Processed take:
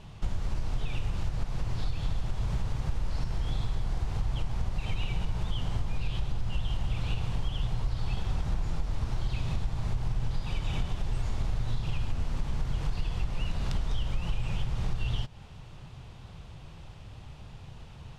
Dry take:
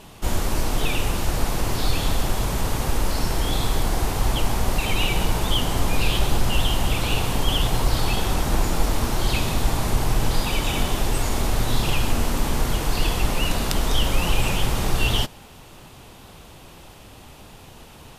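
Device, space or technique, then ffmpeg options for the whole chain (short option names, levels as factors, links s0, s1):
jukebox: -af "lowpass=5500,lowshelf=f=190:t=q:w=1.5:g=9,acompressor=threshold=0.141:ratio=6,volume=0.398"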